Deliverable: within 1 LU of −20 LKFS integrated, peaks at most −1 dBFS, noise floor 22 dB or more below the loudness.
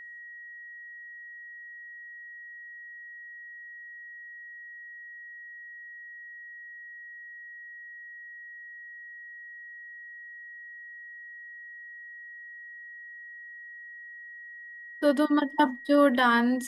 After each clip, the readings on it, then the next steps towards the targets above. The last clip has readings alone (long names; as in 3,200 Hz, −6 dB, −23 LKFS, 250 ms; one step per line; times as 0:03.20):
interfering tone 1,900 Hz; level of the tone −42 dBFS; integrated loudness −33.5 LKFS; sample peak −10.5 dBFS; target loudness −20.0 LKFS
→ notch filter 1,900 Hz, Q 30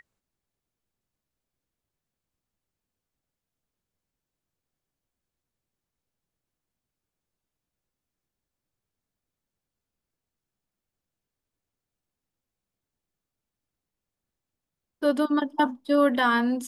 interfering tone none found; integrated loudness −24.0 LKFS; sample peak −10.5 dBFS; target loudness −20.0 LKFS
→ level +4 dB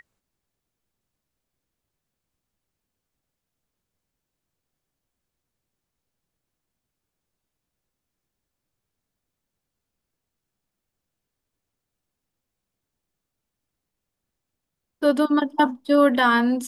integrated loudness −20.0 LKFS; sample peak −6.5 dBFS; background noise floor −84 dBFS